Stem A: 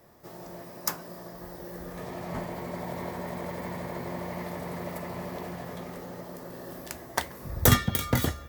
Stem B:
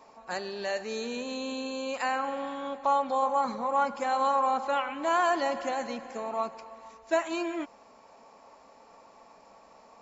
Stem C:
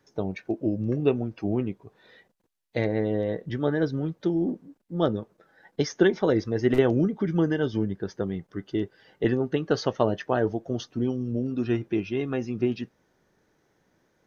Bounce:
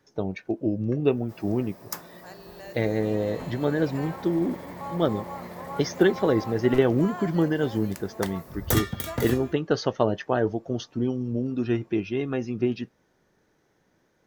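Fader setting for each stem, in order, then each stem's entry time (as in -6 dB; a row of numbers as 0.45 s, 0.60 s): -4.5 dB, -12.0 dB, +0.5 dB; 1.05 s, 1.95 s, 0.00 s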